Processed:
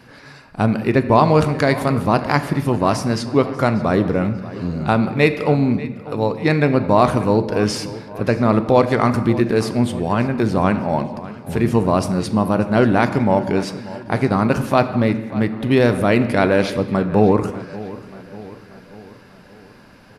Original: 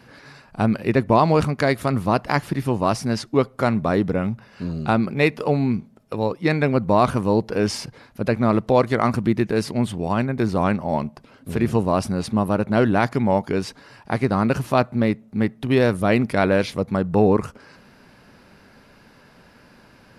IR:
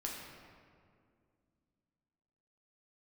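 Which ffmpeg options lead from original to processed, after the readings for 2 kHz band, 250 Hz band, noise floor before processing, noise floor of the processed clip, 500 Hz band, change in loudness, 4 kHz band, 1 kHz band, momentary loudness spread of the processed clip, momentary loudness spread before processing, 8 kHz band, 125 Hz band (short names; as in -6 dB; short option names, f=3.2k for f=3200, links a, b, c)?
+3.0 dB, +3.5 dB, -52 dBFS, -45 dBFS, +3.5 dB, +3.0 dB, +3.0 dB, +3.5 dB, 11 LU, 8 LU, +3.0 dB, +3.5 dB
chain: -filter_complex "[0:a]asplit=2[a][b];[b]adelay=589,lowpass=f=4.6k:p=1,volume=-17dB,asplit=2[c][d];[d]adelay=589,lowpass=f=4.6k:p=1,volume=0.55,asplit=2[e][f];[f]adelay=589,lowpass=f=4.6k:p=1,volume=0.55,asplit=2[g][h];[h]adelay=589,lowpass=f=4.6k:p=1,volume=0.55,asplit=2[i][j];[j]adelay=589,lowpass=f=4.6k:p=1,volume=0.55[k];[a][c][e][g][i][k]amix=inputs=6:normalize=0,asplit=2[l][m];[1:a]atrim=start_sample=2205,afade=t=out:st=0.33:d=0.01,atrim=end_sample=14994[n];[m][n]afir=irnorm=-1:irlink=0,volume=-5dB[o];[l][o]amix=inputs=2:normalize=0"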